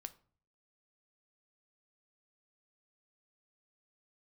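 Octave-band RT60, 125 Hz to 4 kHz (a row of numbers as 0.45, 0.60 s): 0.70, 0.60, 0.50, 0.45, 0.35, 0.30 s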